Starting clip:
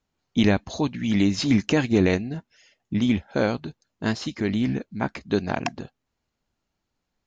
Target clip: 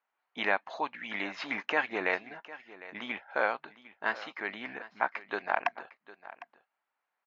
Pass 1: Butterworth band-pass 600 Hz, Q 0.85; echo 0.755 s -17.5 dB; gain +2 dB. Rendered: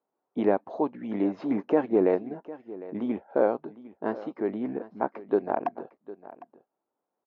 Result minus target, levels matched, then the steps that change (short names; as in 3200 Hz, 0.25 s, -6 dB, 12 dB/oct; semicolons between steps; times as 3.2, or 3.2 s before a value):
500 Hz band +6.0 dB
change: Butterworth band-pass 1300 Hz, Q 0.85